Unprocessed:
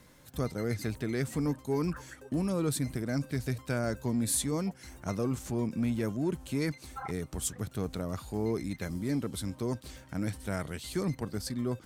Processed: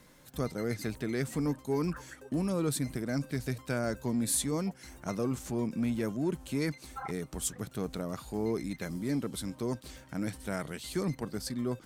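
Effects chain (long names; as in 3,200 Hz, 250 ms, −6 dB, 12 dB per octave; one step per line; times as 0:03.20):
parametric band 89 Hz −13 dB 0.45 octaves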